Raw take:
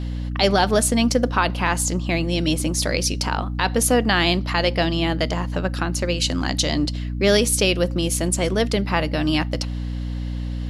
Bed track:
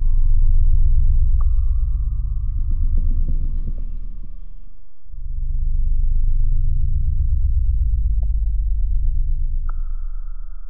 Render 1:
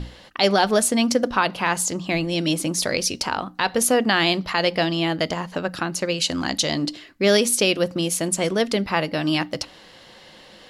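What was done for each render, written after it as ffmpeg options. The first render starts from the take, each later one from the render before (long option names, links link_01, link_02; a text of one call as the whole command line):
ffmpeg -i in.wav -af "bandreject=frequency=60:width_type=h:width=6,bandreject=frequency=120:width_type=h:width=6,bandreject=frequency=180:width_type=h:width=6,bandreject=frequency=240:width_type=h:width=6,bandreject=frequency=300:width_type=h:width=6" out.wav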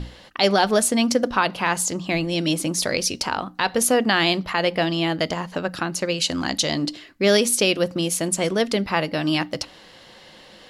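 ffmpeg -i in.wav -filter_complex "[0:a]asettb=1/sr,asplit=3[link_01][link_02][link_03];[link_01]atrim=end=4.434[link_04];[link_02]atrim=start=4.43:end=4.87,asetpts=PTS-STARTPTS,afade=type=in:duration=0.004:curve=qsin,afade=type=out:start_time=0.436:duration=0.004:curve=qsin,equalizer=frequency=4900:width=1.5:gain=-6[link_05];[link_03]atrim=start=4.866[link_06];[link_04][link_05]acrossfade=duration=0.004:curve1=hsin:curve2=qsin[link_07];[link_07][link_06]acrossfade=duration=0.004:curve1=qsin:curve2=hsin" out.wav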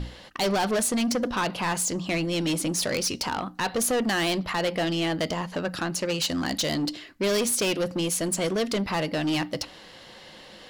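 ffmpeg -i in.wav -af "asoftclip=type=tanh:threshold=-21dB" out.wav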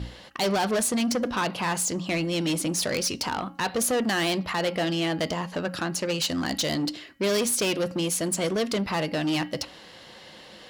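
ffmpeg -i in.wav -af "highpass=44,bandreject=frequency=274.6:width_type=h:width=4,bandreject=frequency=549.2:width_type=h:width=4,bandreject=frequency=823.8:width_type=h:width=4,bandreject=frequency=1098.4:width_type=h:width=4,bandreject=frequency=1373:width_type=h:width=4,bandreject=frequency=1647.6:width_type=h:width=4,bandreject=frequency=1922.2:width_type=h:width=4,bandreject=frequency=2196.8:width_type=h:width=4,bandreject=frequency=2471.4:width_type=h:width=4,bandreject=frequency=2746:width_type=h:width=4,bandreject=frequency=3020.6:width_type=h:width=4" out.wav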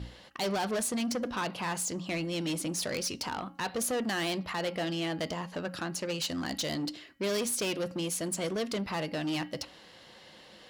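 ffmpeg -i in.wav -af "volume=-6.5dB" out.wav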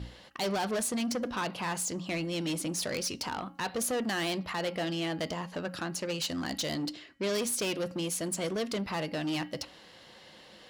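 ffmpeg -i in.wav -filter_complex "[0:a]asettb=1/sr,asplit=3[link_01][link_02][link_03];[link_01]atrim=end=6.934[link_04];[link_02]atrim=start=6.93:end=7.35,asetpts=PTS-STARTPTS,afade=type=in:duration=0.004:curve=qsin,afade=type=out:start_time=0.416:duration=0.004:curve=qsin,lowpass=8900[link_05];[link_03]atrim=start=7.346[link_06];[link_04][link_05]acrossfade=duration=0.004:curve1=hsin:curve2=qsin[link_07];[link_07][link_06]acrossfade=duration=0.004:curve1=qsin:curve2=hsin" out.wav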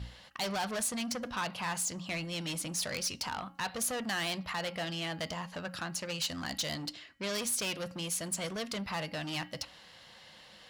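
ffmpeg -i in.wav -af "equalizer=frequency=350:width=1.1:gain=-10.5" out.wav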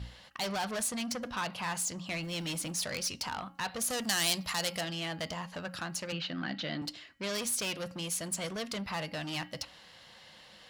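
ffmpeg -i in.wav -filter_complex "[0:a]asettb=1/sr,asplit=3[link_01][link_02][link_03];[link_01]atrim=end=2.234[link_04];[link_02]atrim=start=2.23:end=2.72,asetpts=PTS-STARTPTS,afade=type=in:duration=0.004:curve=qsin,afade=type=out:start_time=0.486:duration=0.004:curve=qsin,aeval=exprs='val(0)+0.5*0.00335*sgn(val(0))':channel_layout=same[link_05];[link_03]atrim=start=2.716[link_06];[link_04][link_05]acrossfade=duration=0.004:curve1=hsin:curve2=qsin[link_07];[link_07][link_06]acrossfade=duration=0.004:curve1=qsin:curve2=hsin,asettb=1/sr,asplit=3[link_08][link_09][link_10];[link_08]atrim=end=3.904[link_11];[link_09]atrim=start=3.9:end=4.81,asetpts=PTS-STARTPTS,afade=type=in:duration=0.004:curve=qsin,afade=type=out:start_time=0.906:duration=0.004:curve=qsin,bass=frequency=250:gain=1,treble=frequency=4000:gain=15[link_12];[link_10]atrim=start=4.806[link_13];[link_11][link_12]acrossfade=duration=0.004:curve1=hsin:curve2=qsin[link_14];[link_14][link_13]acrossfade=duration=0.004:curve1=qsin:curve2=hsin,asettb=1/sr,asplit=3[link_15][link_16][link_17];[link_15]atrim=end=6.124[link_18];[link_16]atrim=start=6.12:end=6.82,asetpts=PTS-STARTPTS,afade=type=in:duration=0.004:curve=qsin,afade=type=out:start_time=0.696:duration=0.004:curve=qsin,highpass=frequency=130:width=0.5412,highpass=frequency=130:width=1.3066,equalizer=frequency=190:width_type=q:width=4:gain=7,equalizer=frequency=320:width_type=q:width=4:gain=7,equalizer=frequency=1000:width_type=q:width=4:gain=-6,equalizer=frequency=1500:width_type=q:width=4:gain=5,lowpass=frequency=3700:width=0.5412,lowpass=frequency=3700:width=1.3066[link_19];[link_17]atrim=start=6.816[link_20];[link_18][link_19]acrossfade=duration=0.004:curve1=hsin:curve2=qsin[link_21];[link_21][link_20]acrossfade=duration=0.004:curve1=qsin:curve2=hsin" out.wav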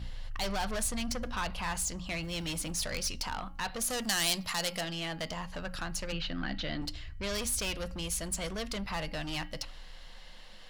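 ffmpeg -i in.wav -i bed.wav -filter_complex "[1:a]volume=-25.5dB[link_01];[0:a][link_01]amix=inputs=2:normalize=0" out.wav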